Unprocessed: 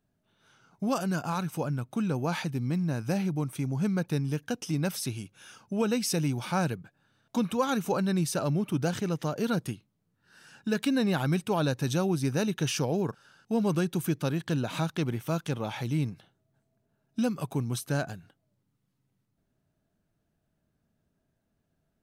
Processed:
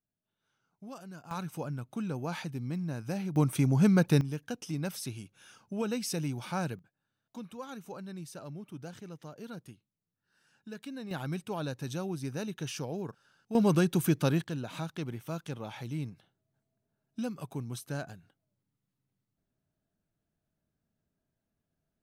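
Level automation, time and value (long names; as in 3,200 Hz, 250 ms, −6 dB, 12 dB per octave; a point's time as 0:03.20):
−17 dB
from 0:01.31 −6 dB
from 0:03.36 +5 dB
from 0:04.21 −5.5 dB
from 0:06.79 −15.5 dB
from 0:11.11 −8.5 dB
from 0:13.55 +2 dB
from 0:14.44 −7.5 dB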